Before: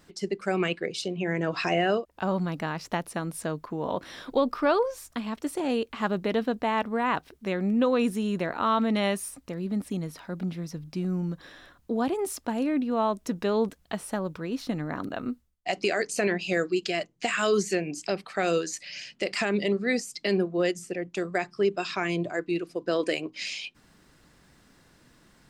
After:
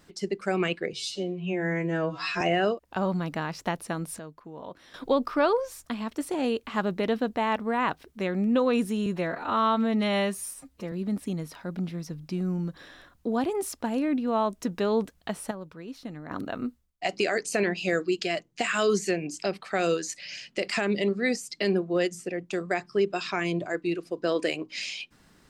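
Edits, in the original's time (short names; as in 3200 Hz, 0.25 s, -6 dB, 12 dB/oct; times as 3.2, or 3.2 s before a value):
0.93–1.67 stretch 2×
3.45–4.2 gain -11 dB
8.32–9.56 stretch 1.5×
14.15–14.95 gain -8.5 dB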